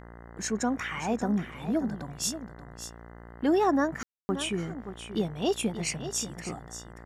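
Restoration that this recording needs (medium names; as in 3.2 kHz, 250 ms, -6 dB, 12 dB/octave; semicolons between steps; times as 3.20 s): de-hum 58.1 Hz, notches 35; room tone fill 4.03–4.29 s; inverse comb 582 ms -11 dB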